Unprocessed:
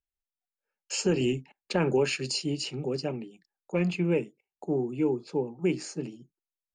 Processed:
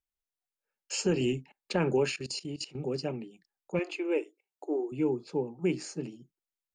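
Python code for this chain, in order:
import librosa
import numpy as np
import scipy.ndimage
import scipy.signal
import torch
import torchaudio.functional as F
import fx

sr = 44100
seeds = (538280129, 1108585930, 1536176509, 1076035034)

y = fx.level_steps(x, sr, step_db=17, at=(2.11, 2.8))
y = fx.brickwall_highpass(y, sr, low_hz=270.0, at=(3.79, 4.92))
y = F.gain(torch.from_numpy(y), -2.0).numpy()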